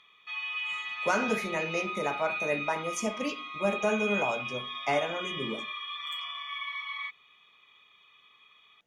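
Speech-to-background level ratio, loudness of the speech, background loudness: 2.5 dB, −32.0 LKFS, −34.5 LKFS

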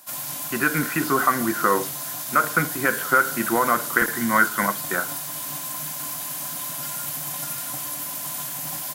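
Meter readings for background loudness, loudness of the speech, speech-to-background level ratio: −28.0 LKFS, −22.5 LKFS, 5.5 dB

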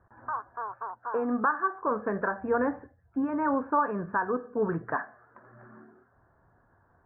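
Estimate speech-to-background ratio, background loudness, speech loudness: 8.0 dB, −37.5 LKFS, −29.5 LKFS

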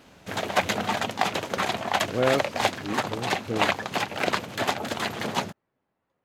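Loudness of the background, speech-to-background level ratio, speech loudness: −27.5 LKFS, −3.0 dB, −30.5 LKFS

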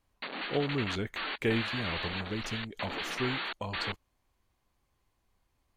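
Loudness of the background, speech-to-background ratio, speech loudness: −36.5 LKFS, 0.5 dB, −36.0 LKFS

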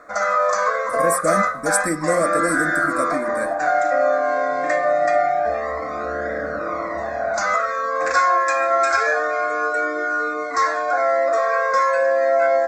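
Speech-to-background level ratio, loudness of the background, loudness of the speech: −4.0 dB, −20.0 LKFS, −24.0 LKFS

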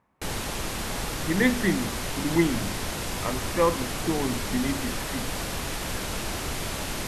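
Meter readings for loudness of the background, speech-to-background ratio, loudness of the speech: −31.0 LKFS, 3.0 dB, −28.0 LKFS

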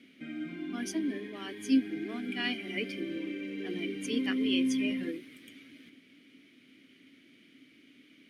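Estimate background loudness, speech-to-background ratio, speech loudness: −36.5 LKFS, 1.0 dB, −35.5 LKFS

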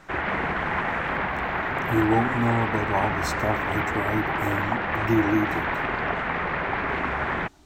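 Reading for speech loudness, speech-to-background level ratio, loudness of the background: −27.0 LKFS, −0.5 dB, −26.5 LKFS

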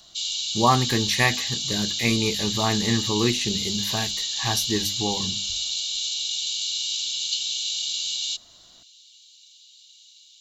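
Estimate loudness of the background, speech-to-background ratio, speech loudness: −25.0 LKFS, −0.5 dB, −25.5 LKFS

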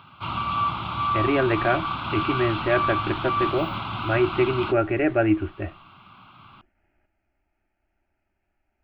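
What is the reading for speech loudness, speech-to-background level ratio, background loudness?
−24.5 LKFS, 3.0 dB, −27.5 LKFS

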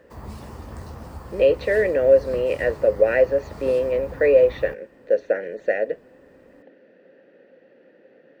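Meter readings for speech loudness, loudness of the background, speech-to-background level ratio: −20.5 LKFS, −39.0 LKFS, 18.5 dB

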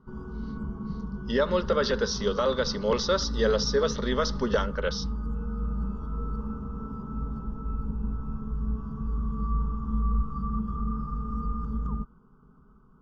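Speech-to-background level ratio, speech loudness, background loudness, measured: 7.0 dB, −27.0 LKFS, −34.0 LKFS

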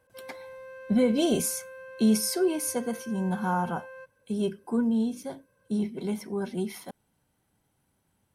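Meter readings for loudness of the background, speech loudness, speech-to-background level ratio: −44.5 LKFS, −28.0 LKFS, 16.5 dB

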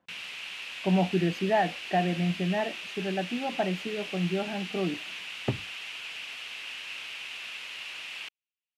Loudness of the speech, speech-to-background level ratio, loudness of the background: −30.0 LKFS, 7.0 dB, −37.0 LKFS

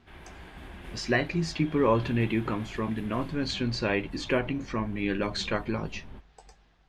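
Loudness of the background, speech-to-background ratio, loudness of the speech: −46.5 LKFS, 17.5 dB, −29.0 LKFS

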